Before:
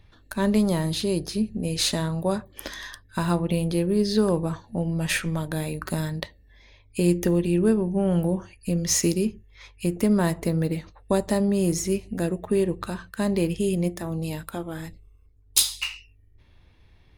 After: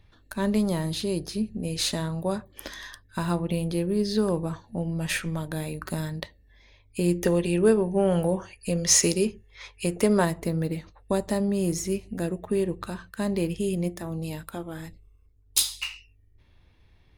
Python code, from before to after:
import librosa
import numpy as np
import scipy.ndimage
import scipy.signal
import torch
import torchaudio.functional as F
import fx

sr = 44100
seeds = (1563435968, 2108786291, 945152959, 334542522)

y = fx.spec_box(x, sr, start_s=7.24, length_s=3.0, low_hz=370.0, high_hz=11000.0, gain_db=7)
y = y * 10.0 ** (-3.0 / 20.0)